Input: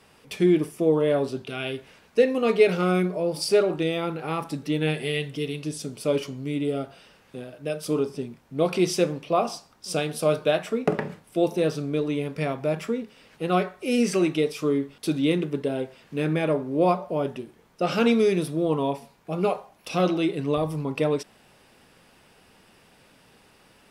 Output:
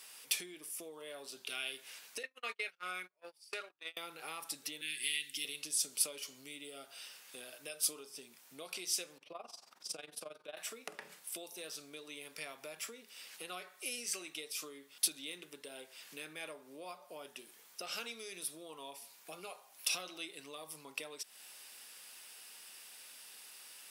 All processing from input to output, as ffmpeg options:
ffmpeg -i in.wav -filter_complex "[0:a]asettb=1/sr,asplit=3[link_01][link_02][link_03];[link_01]atrim=end=2.234[link_04];[link_02]atrim=start=2.23:end=3.97,asetpts=PTS-STARTPTS,afade=type=in:duration=0.004:curve=qsin,afade=type=out:start_time=1.736:duration=0.004:curve=qsin,agate=range=-42dB:threshold=-22dB:ratio=16:release=100:detection=peak,equalizer=frequency=1700:width=0.55:gain=13.5[link_05];[link_03]atrim=start=3.966[link_06];[link_04][link_05]acrossfade=duration=0.004:curve1=hsin:curve2=qsin[link_07];[link_07][link_06]acrossfade=duration=0.004:curve1=qsin:curve2=hsin,asettb=1/sr,asplit=3[link_08][link_09][link_10];[link_08]atrim=end=4.814[link_11];[link_09]atrim=start=4.81:end=5.45,asetpts=PTS-STARTPTS,afade=type=in:duration=0.004:curve=qsin,afade=type=out:start_time=0.636:duration=0.004:curve=qsin,asuperstop=centerf=770:order=8:qfactor=0.56,equalizer=frequency=120:width=1.2:gain=-8[link_12];[link_10]atrim=start=5.446[link_13];[link_11][link_12]acrossfade=duration=0.004:curve1=hsin:curve2=qsin[link_14];[link_14][link_13]acrossfade=duration=0.004:curve1=qsin:curve2=hsin,asettb=1/sr,asplit=3[link_15][link_16][link_17];[link_15]atrim=end=9.184[link_18];[link_16]atrim=start=9.18:end=10.57,asetpts=PTS-STARTPTS,afade=type=in:duration=0.004:curve=qsin,afade=type=out:start_time=1.386:duration=0.004:curve=qsin,lowpass=frequency=1200:poles=1,acompressor=mode=upward:threshold=-42dB:ratio=2.5:attack=3.2:release=140:knee=2.83:detection=peak,tremolo=f=22:d=0.857[link_19];[link_17]atrim=start=10.566[link_20];[link_18][link_19]acrossfade=duration=0.004:curve1=hsin:curve2=qsin[link_21];[link_21][link_20]acrossfade=duration=0.004:curve1=qsin:curve2=hsin,acompressor=threshold=-35dB:ratio=6,highpass=150,aderivative,volume=10.5dB" out.wav

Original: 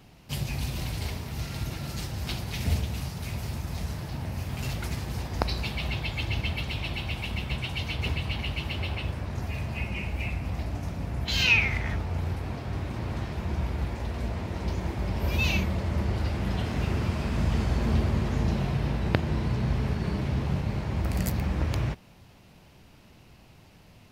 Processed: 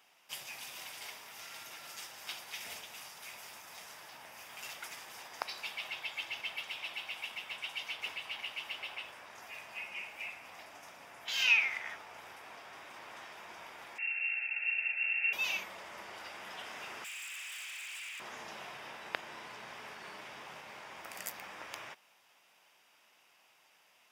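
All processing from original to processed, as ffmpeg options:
ffmpeg -i in.wav -filter_complex "[0:a]asettb=1/sr,asplit=3[link_01][link_02][link_03];[link_01]atrim=end=13.984[link_04];[link_02]atrim=start=13.98:end=15.33,asetpts=PTS-STARTPTS,afade=type=in:duration=0.004:curve=qsin,afade=type=out:start_time=1.346:duration=0.004:curve=qsin,lowpass=frequency=2400:width_type=q:width=0.5098,lowpass=frequency=2400:width_type=q:width=0.6013,lowpass=frequency=2400:width_type=q:width=0.9,lowpass=frequency=2400:width_type=q:width=2.563,afreqshift=-2800,asuperstop=centerf=1100:order=8:qfactor=2.9[link_05];[link_03]atrim=start=15.326[link_06];[link_04][link_05]acrossfade=duration=0.004:curve1=hsin:curve2=qsin[link_07];[link_07][link_06]acrossfade=duration=0.004:curve1=qsin:curve2=hsin,asettb=1/sr,asplit=3[link_08][link_09][link_10];[link_08]atrim=end=17.044[link_11];[link_09]atrim=start=17.04:end=18.2,asetpts=PTS-STARTPTS,afade=type=in:duration=0.004:curve=qsin,afade=type=out:start_time=1.156:duration=0.004:curve=qsin,highpass=frequency=2500:width_type=q:width=5.1,aeval=exprs='0.0188*(abs(mod(val(0)/0.0188+3,4)-2)-1)':channel_layout=same[link_12];[link_10]atrim=start=18.196[link_13];[link_11][link_12]acrossfade=duration=0.004:curve1=hsin:curve2=qsin[link_14];[link_14][link_13]acrossfade=duration=0.004:curve1=qsin:curve2=hsin,highpass=940,bandreject=frequency=4200:width=5.8,volume=-4.5dB" out.wav

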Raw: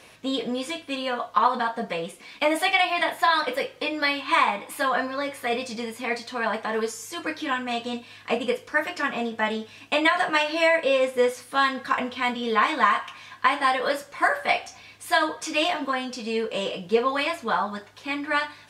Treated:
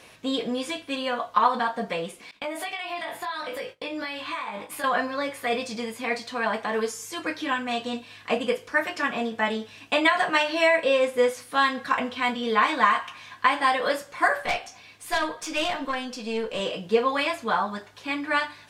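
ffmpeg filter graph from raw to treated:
ffmpeg -i in.wav -filter_complex "[0:a]asettb=1/sr,asplit=3[link_01][link_02][link_03];[link_01]atrim=end=2.314[link_04];[link_02]atrim=start=2.31:end=4.84,asetpts=PTS-STARTPTS,afade=type=in:duration=0.004:curve=qsin,afade=type=out:start_time=2.526:duration=0.004:curve=qsin,agate=range=-33dB:threshold=-37dB:ratio=3:release=100:detection=peak,acompressor=threshold=-31dB:ratio=6:attack=3.2:release=140:knee=1:detection=peak,asplit=2[link_05][link_06];[link_06]adelay=20,volume=-4dB[link_07];[link_05][link_07]amix=inputs=2:normalize=0,atrim=end_sample=111573[link_08];[link_03]atrim=start=4.836[link_09];[link_04][link_08]acrossfade=duration=0.004:curve1=hsin:curve2=qsin[link_10];[link_10][link_09]acrossfade=duration=0.004:curve1=qsin:curve2=hsin,asettb=1/sr,asplit=3[link_11][link_12][link_13];[link_11]atrim=end=14.424[link_14];[link_12]atrim=start=14.42:end=16.6,asetpts=PTS-STARTPTS,afade=type=in:duration=0.004:curve=qsin,afade=type=out:start_time=2.176:duration=0.004:curve=qsin,highpass=92,aeval=exprs='(tanh(8.91*val(0)+0.45)-tanh(0.45))/8.91':channel_layout=same[link_15];[link_13]atrim=start=16.596[link_16];[link_14][link_15]acrossfade=duration=0.004:curve1=hsin:curve2=qsin[link_17];[link_17][link_16]acrossfade=duration=0.004:curve1=qsin:curve2=hsin" out.wav

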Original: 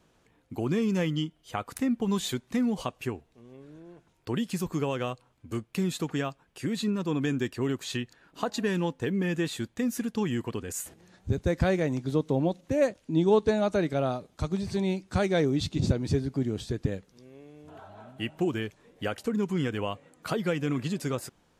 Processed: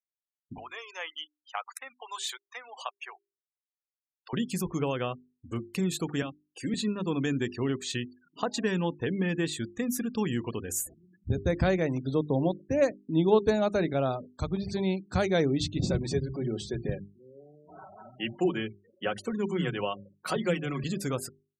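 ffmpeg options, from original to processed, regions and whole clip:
ffmpeg -i in.wav -filter_complex "[0:a]asettb=1/sr,asplit=3[link_01][link_02][link_03];[link_01]atrim=end=0.584[link_04];[link_02]atrim=start=0.58:end=4.33,asetpts=PTS-STARTPTS,afade=type=in:duration=0.004:curve=qsin,afade=type=out:start_time=3.746:duration=0.004:curve=qsin,highpass=frequency=740:width=0.5412,highpass=frequency=740:width=1.3066,highshelf=frequency=6700:gain=-6[link_05];[link_03]atrim=start=4.326[link_06];[link_04][link_05]acrossfade=duration=0.004:curve1=hsin:curve2=qsin[link_07];[link_07][link_06]acrossfade=duration=0.004:curve1=qsin:curve2=hsin,asettb=1/sr,asplit=3[link_08][link_09][link_10];[link_08]atrim=end=6.224[link_11];[link_09]atrim=start=6.22:end=6.74,asetpts=PTS-STARTPTS,afade=type=in:duration=0.004:curve=qsin,afade=type=out:start_time=0.516:duration=0.004:curve=qsin,aecho=1:1:3.8:0.45,atrim=end_sample=22932,acrossover=split=290|3000[link_12][link_13][link_14];[link_13]acompressor=threshold=-39dB:ratio=2.5:attack=3.2:release=140:knee=2.83:detection=peak[link_15];[link_12][link_15][link_14]amix=inputs=3:normalize=0[link_16];[link_10]atrim=start=6.736[link_17];[link_11][link_16]acrossfade=duration=0.004:curve1=hsin:curve2=qsin[link_18];[link_18][link_17]acrossfade=duration=0.004:curve1=qsin:curve2=hsin,asettb=1/sr,asplit=3[link_19][link_20][link_21];[link_19]atrim=end=15.864[link_22];[link_20]atrim=start=15.86:end=20.84,asetpts=PTS-STARTPTS,afade=type=in:duration=0.004:curve=qsin,afade=type=out:start_time=4.976:duration=0.004:curve=qsin,aecho=1:1:5.4:0.5,atrim=end_sample=219618,acrossover=split=190[link_23][link_24];[link_23]adelay=40[link_25];[link_25][link_24]amix=inputs=2:normalize=0,atrim=end_sample=219618[link_26];[link_21]atrim=start=20.836[link_27];[link_22][link_26]acrossfade=duration=0.004:curve1=hsin:curve2=qsin[link_28];[link_28][link_27]acrossfade=duration=0.004:curve1=qsin:curve2=hsin,afftfilt=real='re*gte(hypot(re,im),0.00708)':imag='im*gte(hypot(re,im),0.00708)':win_size=1024:overlap=0.75,highshelf=frequency=9200:gain=9,bandreject=frequency=50:width_type=h:width=6,bandreject=frequency=100:width_type=h:width=6,bandreject=frequency=150:width_type=h:width=6,bandreject=frequency=200:width_type=h:width=6,bandreject=frequency=250:width_type=h:width=6,bandreject=frequency=300:width_type=h:width=6,bandreject=frequency=350:width_type=h:width=6,bandreject=frequency=400:width_type=h:width=6" out.wav

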